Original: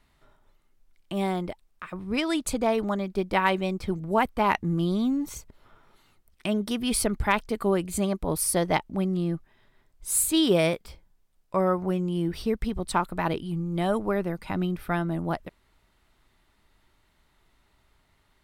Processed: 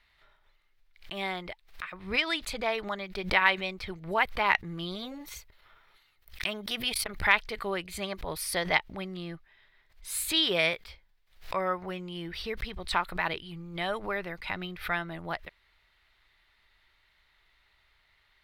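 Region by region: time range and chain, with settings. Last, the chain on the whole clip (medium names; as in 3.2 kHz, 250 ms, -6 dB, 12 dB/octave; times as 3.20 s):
4.95–7.23 s: expander -57 dBFS + treble shelf 10 kHz +10 dB + transformer saturation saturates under 600 Hz
whole clip: graphic EQ 125/250/2000/4000/8000 Hz -4/-11/+10/+9/-7 dB; swell ahead of each attack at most 140 dB/s; trim -5.5 dB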